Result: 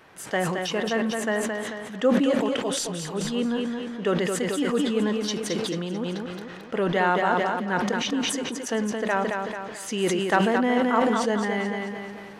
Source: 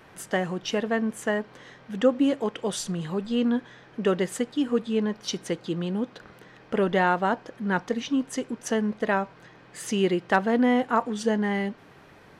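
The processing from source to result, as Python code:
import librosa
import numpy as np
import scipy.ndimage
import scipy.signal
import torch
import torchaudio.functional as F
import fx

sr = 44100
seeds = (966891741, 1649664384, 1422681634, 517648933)

p1 = fx.low_shelf(x, sr, hz=240.0, db=-7.0)
p2 = p1 + fx.echo_feedback(p1, sr, ms=220, feedback_pct=44, wet_db=-6, dry=0)
y = fx.sustainer(p2, sr, db_per_s=24.0)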